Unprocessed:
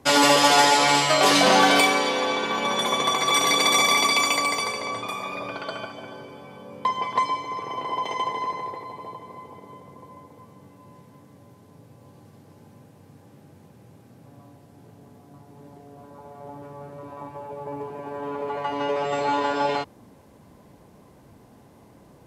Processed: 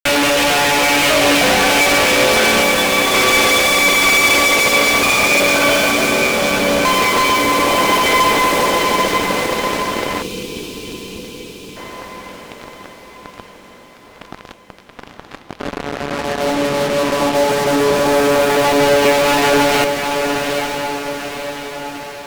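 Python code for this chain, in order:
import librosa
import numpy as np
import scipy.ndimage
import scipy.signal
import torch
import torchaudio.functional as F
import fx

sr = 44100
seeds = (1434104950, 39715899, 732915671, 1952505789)

p1 = fx.cabinet(x, sr, low_hz=170.0, low_slope=24, high_hz=3700.0, hz=(210.0, 320.0, 560.0, 1000.0, 1700.0, 2500.0), db=(5, 5, 5, -5, 4, 10))
p2 = fx.over_compress(p1, sr, threshold_db=-21.0, ratio=-0.5)
p3 = p1 + F.gain(torch.from_numpy(p2), 0.0).numpy()
p4 = fx.power_curve(p3, sr, exponent=2.0, at=(2.62, 3.14))
p5 = fx.fuzz(p4, sr, gain_db=42.0, gate_db=-33.0)
p6 = p5 + fx.echo_diffused(p5, sr, ms=883, feedback_pct=53, wet_db=-5, dry=0)
y = fx.spec_box(p6, sr, start_s=10.22, length_s=1.55, low_hz=500.0, high_hz=2300.0, gain_db=-15)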